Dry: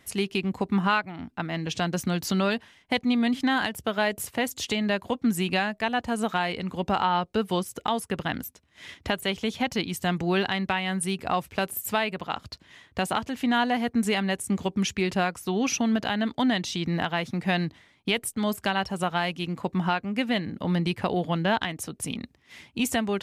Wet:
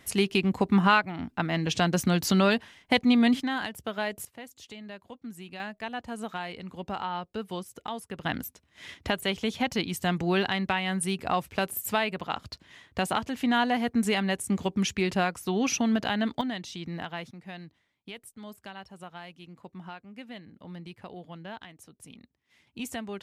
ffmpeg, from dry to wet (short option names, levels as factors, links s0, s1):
-af "asetnsamples=n=441:p=0,asendcmd='3.4 volume volume -6dB;4.25 volume volume -17dB;5.6 volume volume -9dB;8.23 volume volume -1dB;16.41 volume volume -9dB;17.31 volume volume -17dB;22.67 volume volume -10dB',volume=1.33"